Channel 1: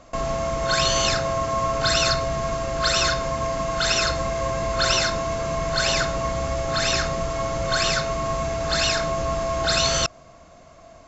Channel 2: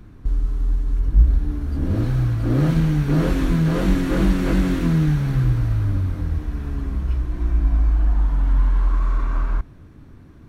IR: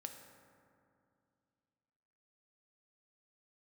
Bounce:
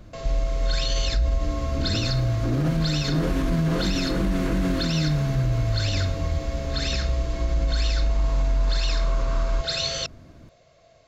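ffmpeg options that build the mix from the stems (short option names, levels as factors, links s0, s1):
-filter_complex "[0:a]equalizer=f=125:t=o:w=1:g=9,equalizer=f=250:t=o:w=1:g=-7,equalizer=f=500:t=o:w=1:g=11,equalizer=f=1000:t=o:w=1:g=-6,equalizer=f=2000:t=o:w=1:g=5,equalizer=f=4000:t=o:w=1:g=10,volume=0.224[s0];[1:a]volume=0.75[s1];[s0][s1]amix=inputs=2:normalize=0,alimiter=limit=0.178:level=0:latency=1:release=42"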